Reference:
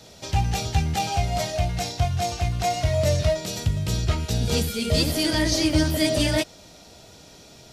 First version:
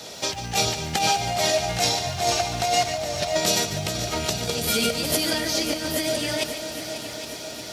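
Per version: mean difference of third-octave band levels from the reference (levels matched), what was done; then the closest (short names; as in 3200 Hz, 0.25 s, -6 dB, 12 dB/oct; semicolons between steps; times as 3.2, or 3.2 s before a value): 7.5 dB: negative-ratio compressor -28 dBFS, ratio -1; HPF 400 Hz 6 dB/oct; multi-head echo 0.271 s, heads second and third, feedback 63%, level -12.5 dB; lo-fi delay 0.145 s, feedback 35%, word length 9-bit, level -11 dB; gain +6 dB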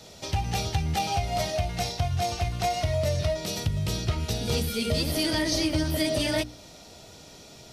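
2.0 dB: notch 1600 Hz, Q 26; dynamic EQ 7200 Hz, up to -8 dB, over -54 dBFS, Q 6; notches 60/120/180/240/300 Hz; compressor, threshold -22 dBFS, peak gain reduction 6.5 dB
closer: second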